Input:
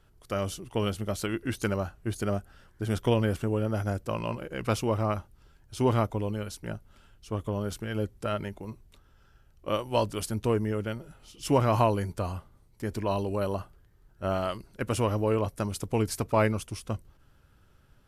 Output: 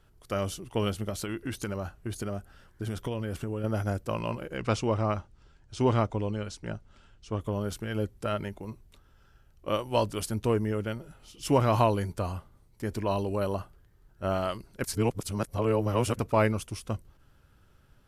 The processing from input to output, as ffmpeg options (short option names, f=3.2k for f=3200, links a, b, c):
-filter_complex "[0:a]asettb=1/sr,asplit=3[a][b][c];[a]atrim=end=1.094[d];[b]atrim=start=1.09:end=3.64,asetpts=PTS-STARTPTS,afade=t=in:d=0.004:c=qsin,afade=t=out:st=2.546:d=0.004:c=qsin,acompressor=threshold=-28dB:ratio=6:attack=3.2:release=140:knee=1:detection=peak[e];[c]atrim=start=3.636[f];[d][e]acrossfade=d=0.004:c1=hsin:c2=qsin[g];[g][f]acrossfade=d=0.004:c1=qsin:c2=hsin,asettb=1/sr,asplit=3[h][i][j];[h]atrim=end=4.574[k];[i]atrim=start=4.57:end=7.41,asetpts=PTS-STARTPTS,afade=t=in:d=0.004:c=qsin,afade=t=out:st=2.836:d=0.004:c=qsin,lowpass=f=8k:w=0.5412,lowpass=f=8k:w=1.3066[l];[j]atrim=start=7.406[m];[k][l]acrossfade=d=0.004:c1=hsin:c2=qsin[n];[n][m]acrossfade=d=0.004:c1=qsin:c2=hsin,asettb=1/sr,asplit=3[o][p][q];[o]atrim=end=11.644[r];[p]atrim=start=11.64:end=12.08,asetpts=PTS-STARTPTS,afade=t=in:d=0.004:c=qsin,afade=t=out:st=0.436:d=0.004:c=qsin,equalizer=f=3.6k:t=o:w=0.26:g=7[s];[q]atrim=start=12.076[t];[r][s]acrossfade=d=0.004:c1=hsin:c2=qsin[u];[u][t]acrossfade=d=0.004:c1=qsin:c2=hsin,asplit=3[v][w][x];[v]atrim=end=14.842[y];[w]atrim=start=14.838:end=16.192,asetpts=PTS-STARTPTS,areverse[z];[x]atrim=start=16.188[aa];[y][z]acrossfade=d=0.004:c1=hsin:c2=hsin[ab];[ab][aa]acrossfade=d=0.004:c1=hsin:c2=hsin"